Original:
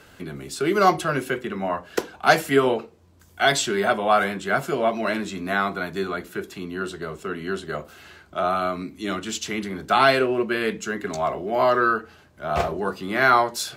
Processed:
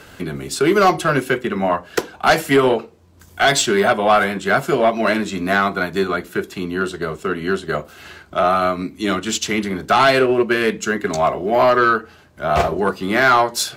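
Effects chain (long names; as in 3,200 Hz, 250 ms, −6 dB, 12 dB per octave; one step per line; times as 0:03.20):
in parallel at 0 dB: brickwall limiter −12.5 dBFS, peak gain reduction 9.5 dB
on the sum: transient designer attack +1 dB, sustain −4 dB
soft clipping −8 dBFS, distortion −16 dB
level +2 dB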